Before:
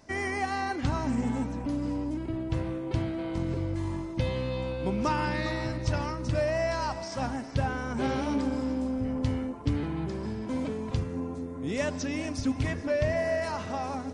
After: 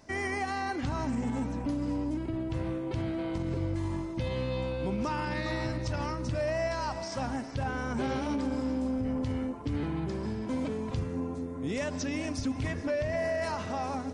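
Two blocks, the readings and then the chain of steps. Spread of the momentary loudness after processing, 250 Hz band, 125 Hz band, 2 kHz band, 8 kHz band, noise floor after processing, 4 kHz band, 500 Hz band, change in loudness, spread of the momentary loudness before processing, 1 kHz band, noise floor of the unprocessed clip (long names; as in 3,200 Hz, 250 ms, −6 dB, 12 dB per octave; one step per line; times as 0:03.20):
3 LU, −1.5 dB, −2.5 dB, −2.0 dB, −1.5 dB, −38 dBFS, −2.0 dB, −2.0 dB, −2.0 dB, 5 LU, −2.0 dB, −38 dBFS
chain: brickwall limiter −23.5 dBFS, peak gain reduction 8.5 dB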